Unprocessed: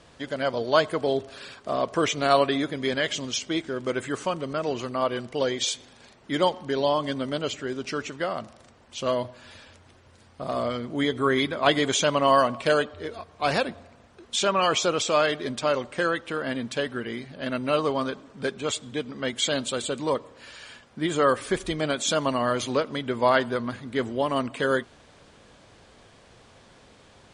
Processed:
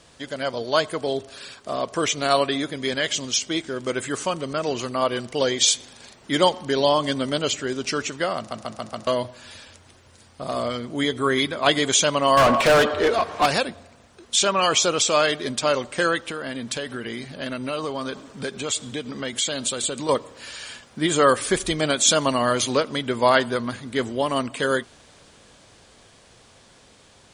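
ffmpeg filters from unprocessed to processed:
-filter_complex "[0:a]asettb=1/sr,asplit=3[s0][s1][s2];[s0]atrim=end=12.374[s3];[s1]atrim=start=12.37:end=13.46,asetpts=PTS-STARTPTS,afade=t=in:d=0.004:c=qsin,afade=t=out:st=1.086:d=0.004:c=qsin,asplit=2[s4][s5];[s5]highpass=f=720:p=1,volume=31.6,asoftclip=type=tanh:threshold=0.398[s6];[s4][s6]amix=inputs=2:normalize=0,lowpass=f=1200:p=1,volume=0.501[s7];[s2]atrim=start=13.456[s8];[s3][s7]acrossfade=d=0.004:c1=hsin:c2=qsin[s9];[s9][s8]acrossfade=d=0.004:c1=qsin:c2=hsin,asettb=1/sr,asplit=3[s10][s11][s12];[s10]atrim=end=16.294[s13];[s11]atrim=start=16.29:end=20.09,asetpts=PTS-STARTPTS,afade=t=in:d=0.004:c=qsin,afade=t=out:st=3.796:d=0.004:c=qsin,acompressor=threshold=0.0251:ratio=3:attack=3.2:release=140:knee=1:detection=peak[s14];[s12]atrim=start=20.086[s15];[s13][s14]acrossfade=d=0.004:c1=hsin:c2=qsin[s16];[s16][s15]acrossfade=d=0.004:c1=qsin:c2=hsin,asplit=6[s17][s18][s19][s20][s21][s22];[s17]atrim=end=8.512[s23];[s18]atrim=start=8.368:end=8.512[s24];[s19]atrim=start=8.368:end=8.512[s25];[s20]atrim=start=8.368:end=8.512[s26];[s21]atrim=start=8.368:end=8.512[s27];[s22]atrim=start=9.068[s28];[s23][s24]acrossfade=d=0.004:c1=hsin:c2=hsin[s29];[s29][s25]acrossfade=d=0.004:c1=hsin:c2=hsin[s30];[s30][s26]acrossfade=d=0.004:c1=hsin:c2=hsin[s31];[s31][s27]acrossfade=d=0.004:c1=hsin:c2=hsin[s32];[s32][s28]acrossfade=d=0.004:c1=hsin:c2=hsin,highshelf=f=4500:g=11,dynaudnorm=f=890:g=9:m=3.76,volume=0.891"

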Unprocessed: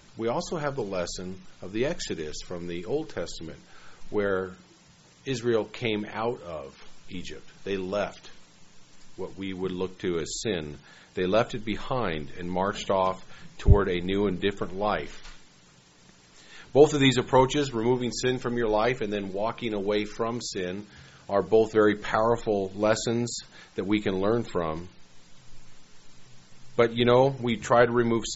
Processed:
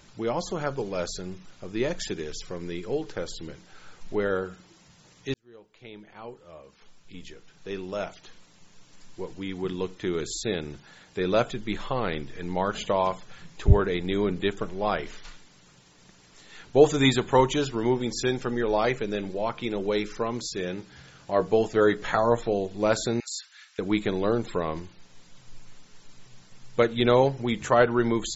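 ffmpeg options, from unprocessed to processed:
-filter_complex "[0:a]asettb=1/sr,asplit=3[s0][s1][s2];[s0]atrim=end=20.624[s3];[s1]atrim=start=20.62:end=22.53,asetpts=PTS-STARTPTS,afade=t=in:d=0.004:c=qsin,afade=t=out:st=1.906:d=0.004:c=qsin,asplit=2[s4][s5];[s5]adelay=17,volume=0.299[s6];[s4][s6]amix=inputs=2:normalize=0,atrim=end_sample=84231[s7];[s2]atrim=start=22.526[s8];[s3][s7]acrossfade=d=0.004:c1=hsin:c2=qsin[s9];[s9][s8]acrossfade=d=0.004:c1=qsin:c2=hsin,asettb=1/sr,asplit=3[s10][s11][s12];[s10]atrim=end=23.204[s13];[s11]atrim=start=23.2:end=23.79,asetpts=PTS-STARTPTS,afade=t=in:d=0.004:c=qsin,afade=t=out:st=0.586:d=0.004:c=qsin,highpass=f=1400:w=0.5412,highpass=f=1400:w=1.3066[s14];[s12]atrim=start=23.786[s15];[s13][s14]acrossfade=d=0.004:c1=hsin:c2=qsin[s16];[s16][s15]acrossfade=d=0.004:c1=qsin:c2=hsin,asplit=2[s17][s18];[s17]atrim=end=5.34,asetpts=PTS-STARTPTS,afade=t=out:st=5.336:d=0.004:c=hsin[s19];[s18]atrim=start=5.34,asetpts=PTS-STARTPTS,afade=t=in:d=3.9[s20];[s19][s20]concat=n=2:v=0:a=1"

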